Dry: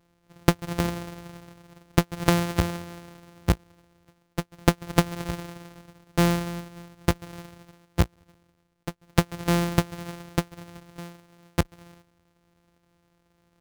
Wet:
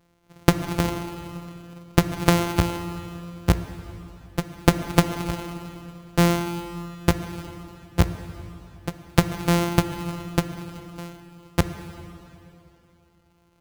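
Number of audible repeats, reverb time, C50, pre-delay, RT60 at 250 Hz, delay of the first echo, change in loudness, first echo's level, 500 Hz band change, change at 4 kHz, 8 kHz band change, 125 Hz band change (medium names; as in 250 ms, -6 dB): no echo, 2.9 s, 10.0 dB, 7 ms, 2.9 s, no echo, +2.5 dB, no echo, +2.5 dB, +3.0 dB, +2.5 dB, +3.0 dB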